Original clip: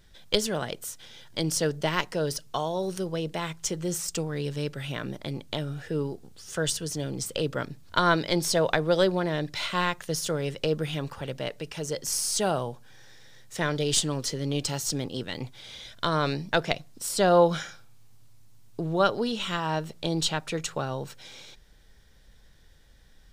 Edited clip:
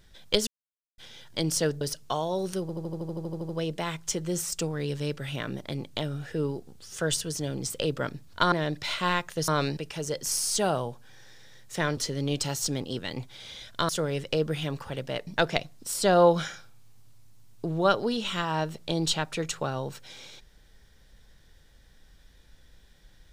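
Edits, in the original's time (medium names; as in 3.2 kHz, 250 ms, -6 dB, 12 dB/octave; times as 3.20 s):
0.47–0.98 s: mute
1.81–2.25 s: delete
3.05 s: stutter 0.08 s, 12 plays
8.08–9.24 s: delete
10.20–11.58 s: swap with 16.13–16.42 s
13.78–14.21 s: delete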